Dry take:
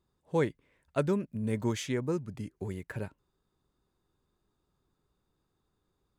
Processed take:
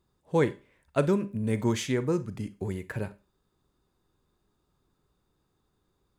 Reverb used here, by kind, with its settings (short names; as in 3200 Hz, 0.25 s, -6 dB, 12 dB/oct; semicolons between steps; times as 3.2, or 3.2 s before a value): Schroeder reverb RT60 0.3 s, combs from 31 ms, DRR 14 dB; gain +4 dB